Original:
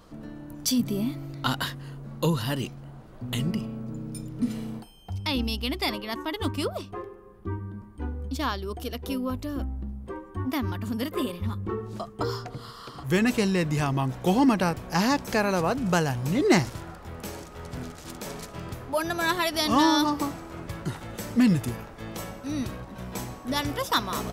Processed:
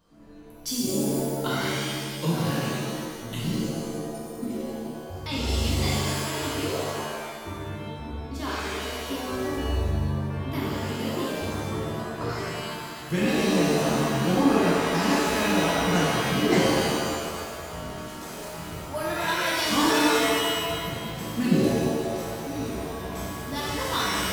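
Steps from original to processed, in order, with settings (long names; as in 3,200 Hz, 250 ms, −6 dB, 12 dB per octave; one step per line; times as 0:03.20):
noise reduction from a noise print of the clip's start 7 dB
reverb with rising layers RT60 1.6 s, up +7 semitones, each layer −2 dB, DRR −6.5 dB
level −8.5 dB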